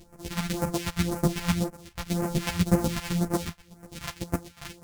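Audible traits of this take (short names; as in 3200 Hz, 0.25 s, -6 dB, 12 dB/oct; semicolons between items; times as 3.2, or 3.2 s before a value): a buzz of ramps at a fixed pitch in blocks of 256 samples; phasing stages 2, 1.9 Hz, lowest notch 340–3400 Hz; chopped level 8.1 Hz, depth 65%, duty 20%; a shimmering, thickened sound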